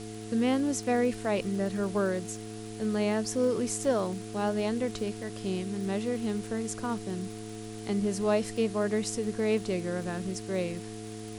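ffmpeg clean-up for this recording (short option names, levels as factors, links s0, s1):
-af "adeclick=t=4,bandreject=f=108.7:t=h:w=4,bandreject=f=217.4:t=h:w=4,bandreject=f=326.1:t=h:w=4,bandreject=f=434.8:t=h:w=4,bandreject=f=710:w=30,afwtdn=0.004"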